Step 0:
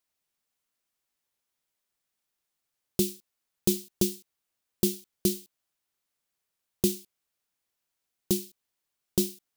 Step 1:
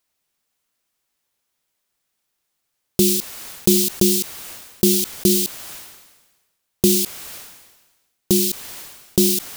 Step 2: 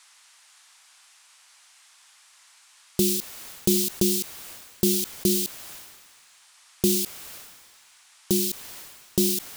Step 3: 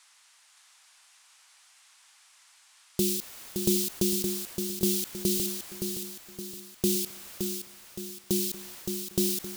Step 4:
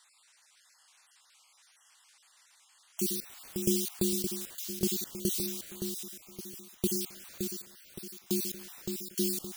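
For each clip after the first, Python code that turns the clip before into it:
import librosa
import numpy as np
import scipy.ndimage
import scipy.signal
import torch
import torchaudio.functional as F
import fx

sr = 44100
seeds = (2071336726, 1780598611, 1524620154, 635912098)

y1 = fx.sustainer(x, sr, db_per_s=47.0)
y1 = y1 * 10.0 ** (8.0 / 20.0)
y2 = fx.dmg_noise_band(y1, sr, seeds[0], low_hz=850.0, high_hz=9800.0, level_db=-50.0)
y2 = y2 * 10.0 ** (-6.0 / 20.0)
y3 = fx.echo_feedback(y2, sr, ms=568, feedback_pct=46, wet_db=-6.0)
y3 = y3 * 10.0 ** (-4.5 / 20.0)
y4 = fx.spec_dropout(y3, sr, seeds[1], share_pct=30)
y4 = y4 * 10.0 ** (-2.5 / 20.0)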